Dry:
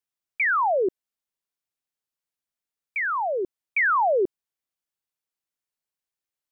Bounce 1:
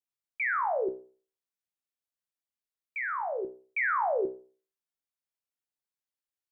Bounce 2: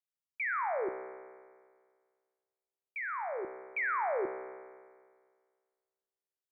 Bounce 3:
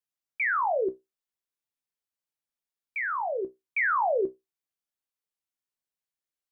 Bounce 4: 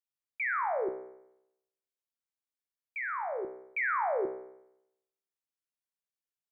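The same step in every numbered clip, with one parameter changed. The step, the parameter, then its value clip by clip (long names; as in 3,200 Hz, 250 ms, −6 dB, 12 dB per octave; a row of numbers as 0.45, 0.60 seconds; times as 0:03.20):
tuned comb filter, decay: 0.4, 1.8, 0.18, 0.83 seconds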